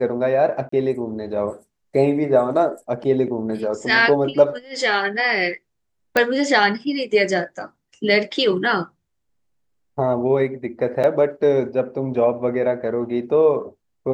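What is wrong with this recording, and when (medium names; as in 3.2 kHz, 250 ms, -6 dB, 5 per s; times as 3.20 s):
0.69–0.72 s: dropout 34 ms
6.17 s: pop -4 dBFS
11.03–11.04 s: dropout 7.4 ms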